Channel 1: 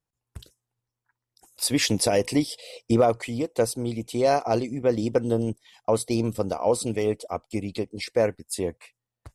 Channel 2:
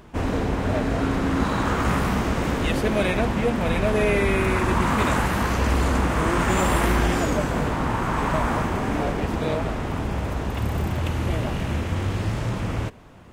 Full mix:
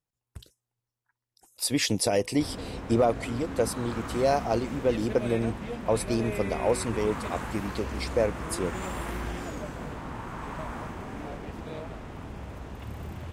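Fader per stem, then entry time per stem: −3.0, −13.5 decibels; 0.00, 2.25 seconds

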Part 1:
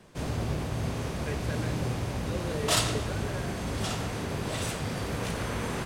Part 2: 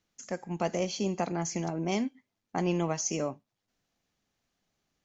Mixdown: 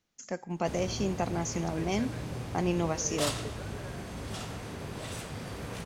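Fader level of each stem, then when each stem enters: −7.0, −0.5 decibels; 0.50, 0.00 seconds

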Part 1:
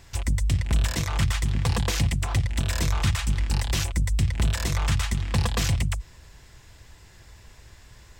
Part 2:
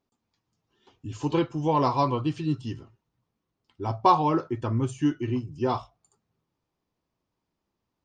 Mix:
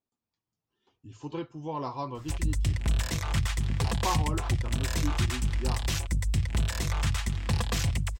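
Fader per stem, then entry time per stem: −4.0, −11.0 decibels; 2.15, 0.00 seconds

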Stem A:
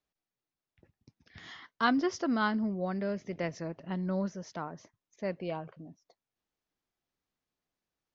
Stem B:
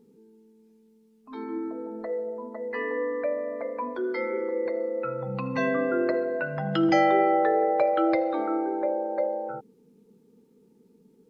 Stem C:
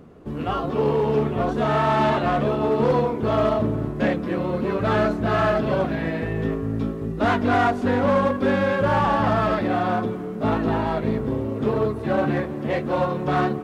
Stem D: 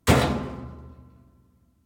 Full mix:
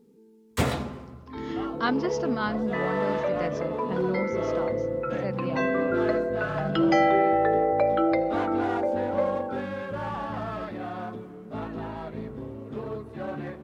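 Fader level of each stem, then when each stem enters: +0.5, 0.0, −12.5, −6.5 decibels; 0.00, 0.00, 1.10, 0.50 seconds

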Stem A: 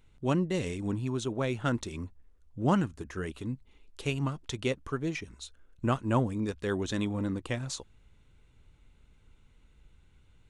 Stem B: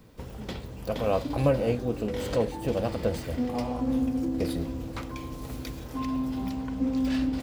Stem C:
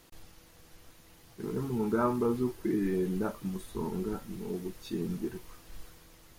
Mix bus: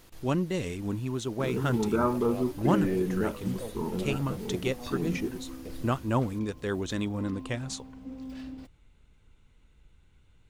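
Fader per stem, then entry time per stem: 0.0, −14.0, +2.0 decibels; 0.00, 1.25, 0.00 seconds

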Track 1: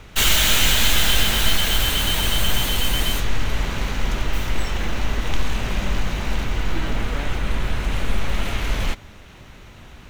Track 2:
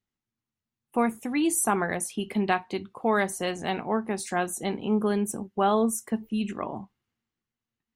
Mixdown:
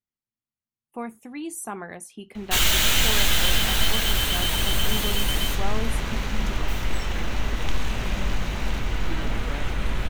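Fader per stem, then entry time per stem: −3.0, −9.0 decibels; 2.35, 0.00 seconds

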